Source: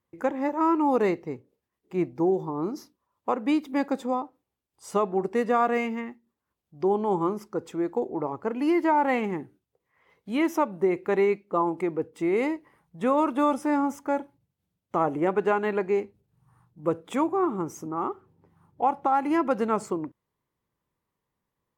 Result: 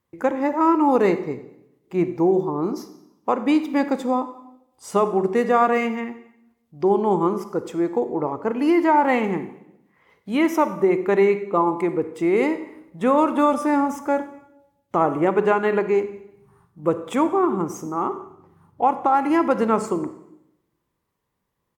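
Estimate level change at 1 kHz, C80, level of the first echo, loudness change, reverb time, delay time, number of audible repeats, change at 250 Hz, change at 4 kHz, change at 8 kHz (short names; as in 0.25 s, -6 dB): +5.5 dB, 14.0 dB, -20.5 dB, +5.5 dB, 0.80 s, 90 ms, 1, +5.5 dB, +5.5 dB, n/a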